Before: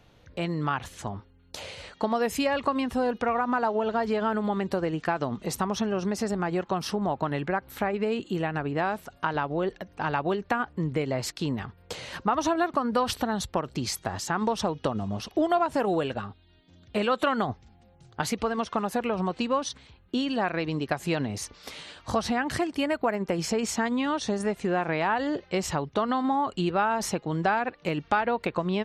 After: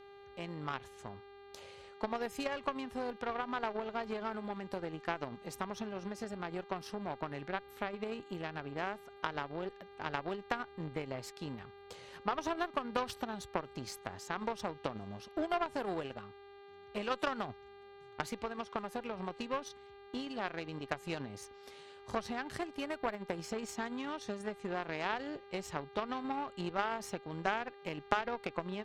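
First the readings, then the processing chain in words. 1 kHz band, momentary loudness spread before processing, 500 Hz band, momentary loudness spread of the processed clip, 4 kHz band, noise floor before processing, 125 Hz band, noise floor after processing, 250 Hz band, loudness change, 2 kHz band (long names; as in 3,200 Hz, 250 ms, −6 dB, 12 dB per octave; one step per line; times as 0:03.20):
−10.5 dB, 8 LU, −11.5 dB, 13 LU, −10.5 dB, −58 dBFS, −14.0 dB, −55 dBFS, −13.5 dB, −11.5 dB, −9.5 dB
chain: hum with harmonics 400 Hz, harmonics 11, −39 dBFS −7 dB per octave
harmonic generator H 3 −12 dB, 6 −37 dB, 7 −43 dB, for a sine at −9.5 dBFS
level −2 dB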